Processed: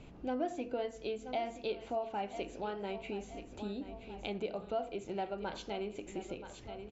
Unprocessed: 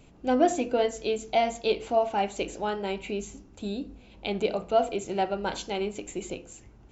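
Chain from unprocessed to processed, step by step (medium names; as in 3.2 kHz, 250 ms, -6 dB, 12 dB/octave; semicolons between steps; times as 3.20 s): distance through air 110 m; feedback delay 977 ms, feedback 36%, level -15.5 dB; compression 2:1, threshold -47 dBFS, peak gain reduction 16.5 dB; trim +2 dB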